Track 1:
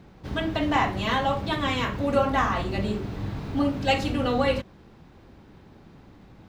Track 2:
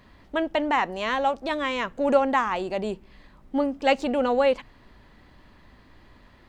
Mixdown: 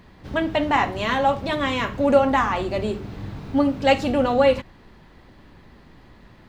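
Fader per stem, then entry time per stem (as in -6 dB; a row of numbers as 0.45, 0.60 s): -2.0, +1.5 dB; 0.00, 0.00 s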